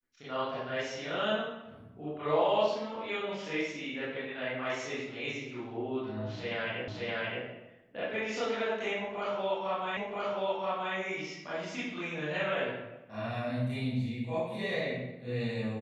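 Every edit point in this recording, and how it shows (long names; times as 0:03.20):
0:06.88: the same again, the last 0.57 s
0:09.97: the same again, the last 0.98 s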